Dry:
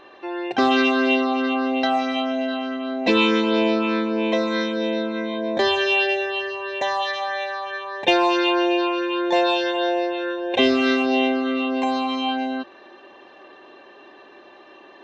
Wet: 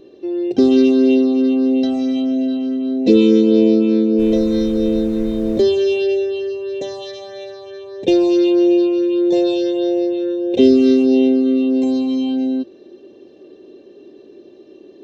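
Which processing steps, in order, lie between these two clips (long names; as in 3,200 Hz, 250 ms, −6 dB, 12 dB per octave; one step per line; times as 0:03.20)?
drawn EQ curve 440 Hz 0 dB, 880 Hz −28 dB, 1,700 Hz −28 dB, 5,100 Hz −8 dB
0:04.18–0:05.61: background noise brown −39 dBFS
level +9 dB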